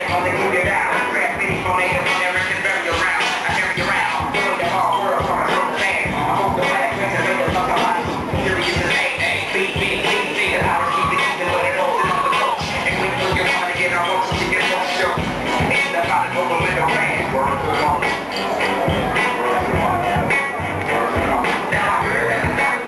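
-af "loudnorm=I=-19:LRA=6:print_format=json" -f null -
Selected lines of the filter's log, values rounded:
"input_i" : "-18.0",
"input_tp" : "-7.1",
"input_lra" : "0.7",
"input_thresh" : "-28.0",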